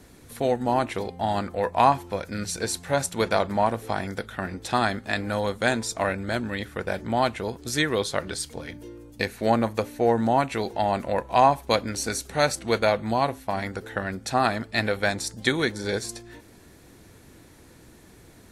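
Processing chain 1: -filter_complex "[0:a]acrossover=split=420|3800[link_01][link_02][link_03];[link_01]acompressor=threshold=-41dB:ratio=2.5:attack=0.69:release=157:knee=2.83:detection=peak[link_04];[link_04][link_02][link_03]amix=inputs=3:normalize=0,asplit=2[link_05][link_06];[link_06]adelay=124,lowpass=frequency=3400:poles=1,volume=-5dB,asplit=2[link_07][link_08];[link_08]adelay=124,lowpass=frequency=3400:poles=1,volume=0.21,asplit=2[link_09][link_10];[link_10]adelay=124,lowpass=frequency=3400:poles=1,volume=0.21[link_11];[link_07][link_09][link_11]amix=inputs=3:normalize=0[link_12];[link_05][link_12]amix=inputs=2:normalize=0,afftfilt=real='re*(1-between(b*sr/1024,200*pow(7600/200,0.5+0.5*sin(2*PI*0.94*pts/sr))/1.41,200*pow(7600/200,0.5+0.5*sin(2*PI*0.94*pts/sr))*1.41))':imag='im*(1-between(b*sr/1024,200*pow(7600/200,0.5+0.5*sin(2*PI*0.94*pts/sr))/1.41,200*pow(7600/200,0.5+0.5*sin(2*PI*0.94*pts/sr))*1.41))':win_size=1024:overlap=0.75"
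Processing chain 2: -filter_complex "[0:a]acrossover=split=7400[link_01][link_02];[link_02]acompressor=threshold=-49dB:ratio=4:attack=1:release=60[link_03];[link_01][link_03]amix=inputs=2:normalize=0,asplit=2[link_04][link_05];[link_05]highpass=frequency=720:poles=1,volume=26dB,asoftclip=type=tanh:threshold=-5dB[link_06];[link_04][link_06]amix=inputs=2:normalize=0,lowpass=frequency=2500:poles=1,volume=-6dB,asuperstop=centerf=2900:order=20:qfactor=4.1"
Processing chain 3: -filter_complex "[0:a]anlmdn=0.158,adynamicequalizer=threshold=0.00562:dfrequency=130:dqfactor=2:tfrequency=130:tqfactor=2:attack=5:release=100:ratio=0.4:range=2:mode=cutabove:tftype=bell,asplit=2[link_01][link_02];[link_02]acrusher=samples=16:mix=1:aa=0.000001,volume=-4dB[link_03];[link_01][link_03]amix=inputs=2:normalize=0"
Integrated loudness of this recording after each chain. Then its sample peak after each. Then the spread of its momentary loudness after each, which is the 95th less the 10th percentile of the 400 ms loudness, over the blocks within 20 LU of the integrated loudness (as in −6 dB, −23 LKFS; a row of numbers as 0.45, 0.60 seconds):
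−26.5, −17.0, −22.5 LKFS; −6.0, −4.0, −2.0 dBFS; 9, 6, 11 LU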